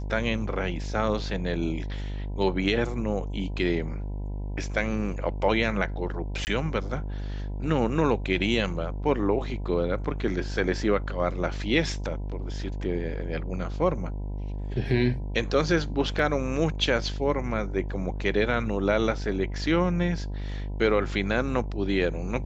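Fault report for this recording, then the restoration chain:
mains buzz 50 Hz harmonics 20 −32 dBFS
0:06.45–0:06.47: drop-out 19 ms
0:16.19: drop-out 2.1 ms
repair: hum removal 50 Hz, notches 20
repair the gap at 0:06.45, 19 ms
repair the gap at 0:16.19, 2.1 ms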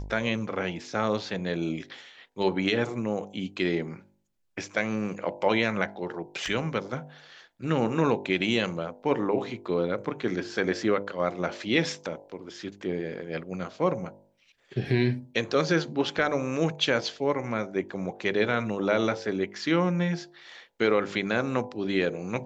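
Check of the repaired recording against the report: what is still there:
none of them is left

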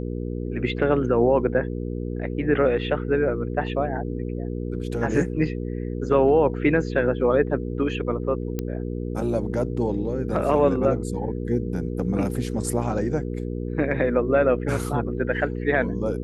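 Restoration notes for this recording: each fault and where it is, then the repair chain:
mains hum 60 Hz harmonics 8 −29 dBFS
0:08.59: click −14 dBFS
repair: click removal
hum removal 60 Hz, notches 8

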